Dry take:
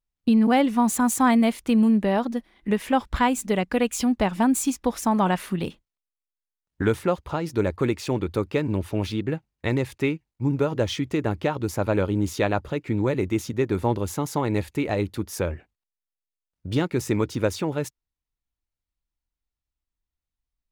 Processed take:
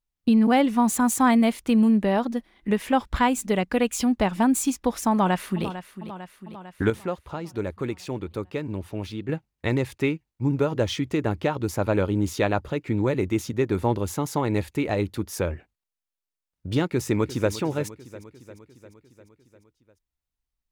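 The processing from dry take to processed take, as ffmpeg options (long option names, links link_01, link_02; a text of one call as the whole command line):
ffmpeg -i in.wav -filter_complex "[0:a]asplit=2[link_01][link_02];[link_02]afade=type=in:start_time=5.11:duration=0.01,afade=type=out:start_time=5.65:duration=0.01,aecho=0:1:450|900|1350|1800|2250|2700|3150|3600:0.237137|0.154139|0.100191|0.0651239|0.0423305|0.0275148|0.0178846|0.011625[link_03];[link_01][link_03]amix=inputs=2:normalize=0,asplit=2[link_04][link_05];[link_05]afade=type=in:start_time=16.86:duration=0.01,afade=type=out:start_time=17.53:duration=0.01,aecho=0:1:350|700|1050|1400|1750|2100|2450:0.177828|0.115588|0.0751323|0.048836|0.0317434|0.0206332|0.0134116[link_06];[link_04][link_06]amix=inputs=2:normalize=0,asplit=3[link_07][link_08][link_09];[link_07]atrim=end=6.902[link_10];[link_08]atrim=start=6.898:end=9.292,asetpts=PTS-STARTPTS,volume=-6dB[link_11];[link_09]atrim=start=9.288[link_12];[link_10][link_11]acrossfade=duration=0.004:curve1=hsin:curve2=hsin[link_13];[link_13][link_12]acrossfade=duration=0.004:curve1=hsin:curve2=hsin" out.wav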